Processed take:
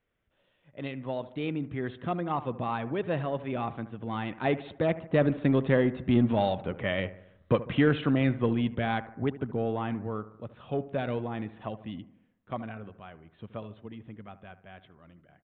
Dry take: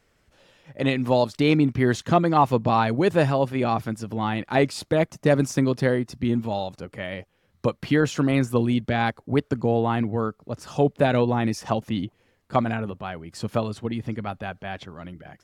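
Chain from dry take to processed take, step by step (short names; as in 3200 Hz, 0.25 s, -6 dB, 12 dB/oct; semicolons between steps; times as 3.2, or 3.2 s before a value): Doppler pass-by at 6.74, 8 m/s, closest 6.5 m; notch 860 Hz, Q 17; in parallel at -5 dB: soft clip -27.5 dBFS, distortion -8 dB; on the sum: analogue delay 74 ms, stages 1024, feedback 52%, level -15.5 dB; downsampling 8000 Hz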